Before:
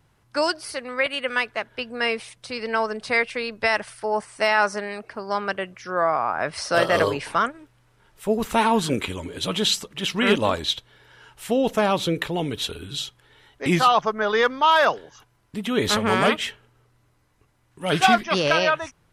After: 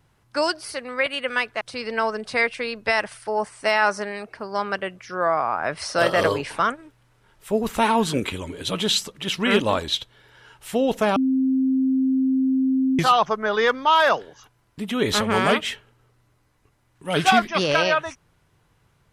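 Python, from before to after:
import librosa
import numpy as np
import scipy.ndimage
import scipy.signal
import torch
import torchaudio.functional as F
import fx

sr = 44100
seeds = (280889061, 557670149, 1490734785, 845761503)

y = fx.edit(x, sr, fx.cut(start_s=1.61, length_s=0.76),
    fx.bleep(start_s=11.92, length_s=1.83, hz=263.0, db=-17.0), tone=tone)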